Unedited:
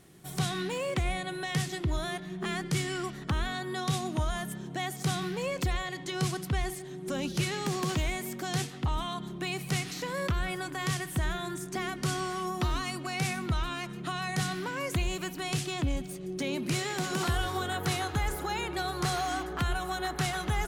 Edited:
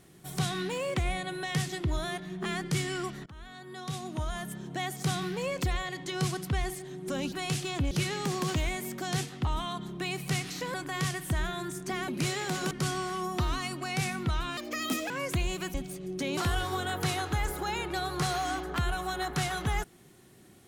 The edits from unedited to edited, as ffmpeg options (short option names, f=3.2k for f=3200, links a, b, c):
-filter_complex "[0:a]asplit=11[a][b][c][d][e][f][g][h][i][j][k];[a]atrim=end=3.26,asetpts=PTS-STARTPTS,afade=t=out:st=3.256:d=0.004:c=hsin:silence=0.0707946[l];[b]atrim=start=3.26:end=7.322,asetpts=PTS-STARTPTS,afade=t=in:d=1.51:silence=0.0707946[m];[c]atrim=start=15.348:end=15.942[n];[d]atrim=start=7.318:end=10.152[o];[e]atrim=start=10.598:end=11.942[p];[f]atrim=start=16.568:end=17.202[q];[g]atrim=start=11.938:end=13.804[r];[h]atrim=start=13.8:end=14.71,asetpts=PTS-STARTPTS,asetrate=75411,aresample=44100,atrim=end_sample=23468,asetpts=PTS-STARTPTS[s];[i]atrim=start=14.706:end=15.352[t];[j]atrim=start=15.938:end=16.572[u];[k]atrim=start=17.198[v];[l][m]concat=n=2:v=0:a=1[w];[w][n]acrossfade=d=0.004:c1=hsin:c2=hsin[x];[x][o]acrossfade=d=0.004:c1=hsin:c2=hsin[y];[y][p]acrossfade=d=0.004:c1=hsin:c2=hsin[z];[z][q]acrossfade=d=0.004:c1=hsin:c2=hsin[aa];[aa][r]acrossfade=d=0.004:c1=hsin:c2=hsin[ab];[ab][s]acrossfade=d=0.004:c1=hsin:c2=hsin[ac];[ac][t]acrossfade=d=0.004:c1=hsin:c2=hsin[ad];[ad][u]acrossfade=d=0.004:c1=hsin:c2=hsin[ae];[ae][v]acrossfade=d=0.004:c1=hsin:c2=hsin"